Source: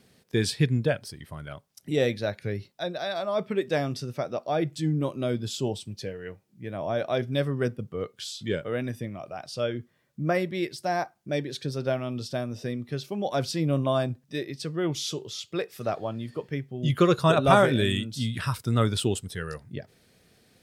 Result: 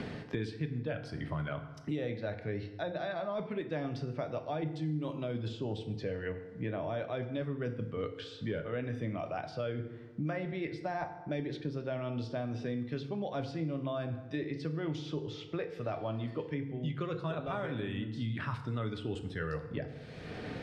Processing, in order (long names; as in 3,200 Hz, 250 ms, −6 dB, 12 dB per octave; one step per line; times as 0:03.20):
reversed playback
downward compressor 4 to 1, threshold −36 dBFS, peak gain reduction 19 dB
reversed playback
low-pass filter 2,800 Hz 12 dB per octave
feedback delay network reverb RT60 0.81 s, low-frequency decay 1×, high-frequency decay 0.65×, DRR 6 dB
multiband upward and downward compressor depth 100%